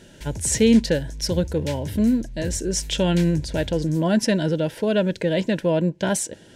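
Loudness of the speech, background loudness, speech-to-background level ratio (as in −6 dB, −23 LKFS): −22.0 LKFS, −35.0 LKFS, 13.0 dB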